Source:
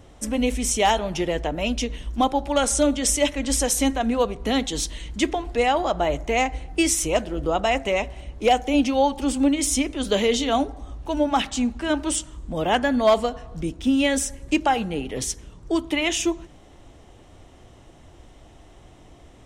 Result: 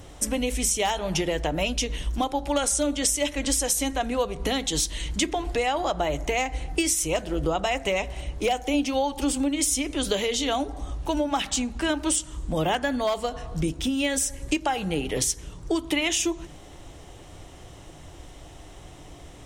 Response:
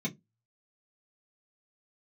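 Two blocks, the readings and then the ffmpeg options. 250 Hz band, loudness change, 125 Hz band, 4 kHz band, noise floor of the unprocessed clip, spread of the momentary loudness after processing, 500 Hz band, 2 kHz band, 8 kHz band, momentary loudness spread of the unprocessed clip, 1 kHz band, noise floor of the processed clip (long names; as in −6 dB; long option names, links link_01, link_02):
−4.5 dB, −3.0 dB, +0.5 dB, −1.0 dB, −49 dBFS, 6 LU, −4.0 dB, −2.5 dB, +0.5 dB, 8 LU, −5.0 dB, −45 dBFS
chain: -filter_complex "[0:a]lowpass=frequency=3800:poles=1,aemphasis=mode=production:type=75fm,acompressor=threshold=-26dB:ratio=6,asplit=2[link_01][link_02];[1:a]atrim=start_sample=2205[link_03];[link_02][link_03]afir=irnorm=-1:irlink=0,volume=-22dB[link_04];[link_01][link_04]amix=inputs=2:normalize=0,volume=4.5dB"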